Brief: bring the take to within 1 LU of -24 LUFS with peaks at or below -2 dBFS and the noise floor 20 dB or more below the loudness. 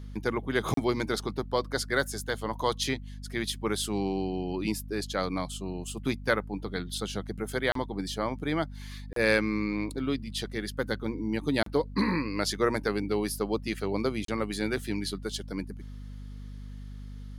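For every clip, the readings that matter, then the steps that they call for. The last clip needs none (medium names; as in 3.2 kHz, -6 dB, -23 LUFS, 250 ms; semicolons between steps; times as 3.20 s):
dropouts 5; longest dropout 33 ms; hum 50 Hz; highest harmonic 250 Hz; hum level -39 dBFS; loudness -30.5 LUFS; peak level -10.5 dBFS; loudness target -24.0 LUFS
-> interpolate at 0.74/7.72/9.13/11.63/14.25 s, 33 ms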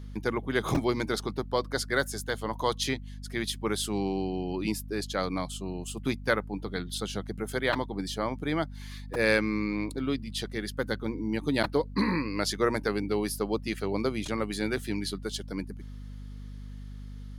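dropouts 0; hum 50 Hz; highest harmonic 250 Hz; hum level -39 dBFS
-> hum notches 50/100/150/200/250 Hz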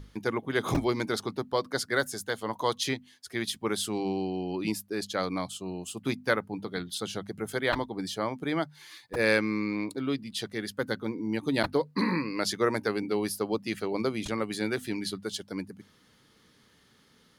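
hum not found; loudness -31.0 LUFS; peak level -10.5 dBFS; loudness target -24.0 LUFS
-> trim +7 dB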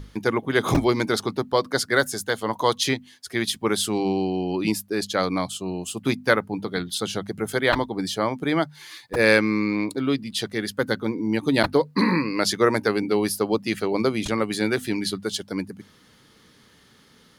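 loudness -24.0 LUFS; peak level -3.5 dBFS; noise floor -56 dBFS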